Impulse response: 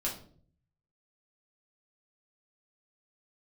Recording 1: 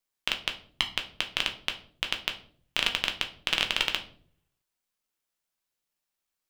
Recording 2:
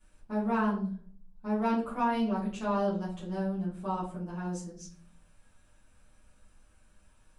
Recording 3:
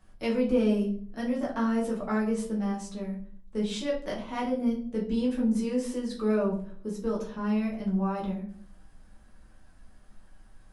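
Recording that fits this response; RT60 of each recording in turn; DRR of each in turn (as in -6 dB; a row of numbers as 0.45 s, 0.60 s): 3; 0.55 s, 0.50 s, 0.50 s; 3.5 dB, -11.0 dB, -4.5 dB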